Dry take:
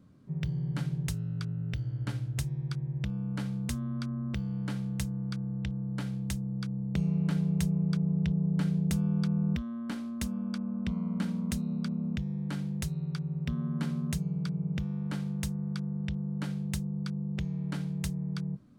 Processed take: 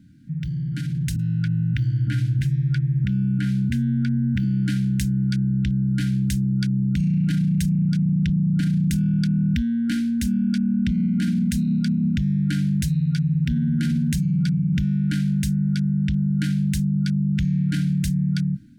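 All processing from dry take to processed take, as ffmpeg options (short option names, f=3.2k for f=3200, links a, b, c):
-filter_complex "[0:a]asettb=1/sr,asplit=3[a][b][c];[a]atrim=end=1.164[d];[b]atrim=start=1.16:end=4.44,asetpts=PTS-STARTPTS,afade=t=in:d=0.004:c=qsin,afade=t=out:st=3.276:d=0.004:c=qsin,highpass=f=81:w=0.5412,highpass=f=81:w=1.3066,acrossover=split=2900[e][f];[f]acompressor=threshold=-57dB:ratio=4:attack=1:release=60[g];[e][g]amix=inputs=2:normalize=0,acrossover=split=240[h][i];[i]adelay=30[j];[h][j]amix=inputs=2:normalize=0,atrim=end_sample=144648[k];[c]atrim=start=4.436[l];[d][k]acrossfade=d=0.004:c1=hsin:c2=qsin[m];[m][l]acrossfade=d=0.004:c1=qsin:c2=hsin,afftfilt=real='re*(1-between(b*sr/4096,330,1400))':imag='im*(1-between(b*sr/4096,330,1400))':win_size=4096:overlap=0.75,alimiter=level_in=6dB:limit=-24dB:level=0:latency=1:release=14,volume=-6dB,dynaudnorm=f=770:g=3:m=7dB,volume=7.5dB"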